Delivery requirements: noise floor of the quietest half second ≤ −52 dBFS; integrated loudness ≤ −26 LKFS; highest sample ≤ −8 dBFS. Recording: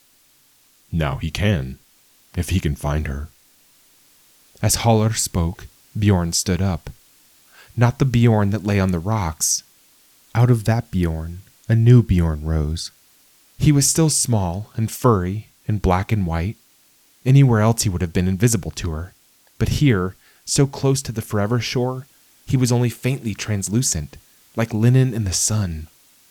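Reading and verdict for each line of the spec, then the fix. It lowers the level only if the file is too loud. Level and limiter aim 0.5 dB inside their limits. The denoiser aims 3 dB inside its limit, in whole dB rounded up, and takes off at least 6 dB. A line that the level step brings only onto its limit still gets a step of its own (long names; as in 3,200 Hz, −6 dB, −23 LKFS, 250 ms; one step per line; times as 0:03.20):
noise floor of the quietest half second −56 dBFS: in spec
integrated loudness −19.5 LKFS: out of spec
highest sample −3.5 dBFS: out of spec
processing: level −7 dB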